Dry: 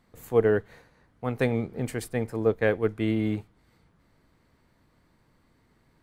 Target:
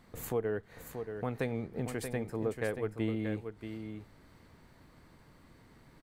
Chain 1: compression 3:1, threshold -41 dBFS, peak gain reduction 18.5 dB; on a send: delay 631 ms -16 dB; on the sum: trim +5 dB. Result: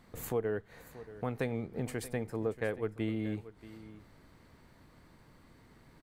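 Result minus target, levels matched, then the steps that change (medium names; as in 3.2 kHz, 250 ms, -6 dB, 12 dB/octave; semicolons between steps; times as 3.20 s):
echo-to-direct -8.5 dB
change: delay 631 ms -7.5 dB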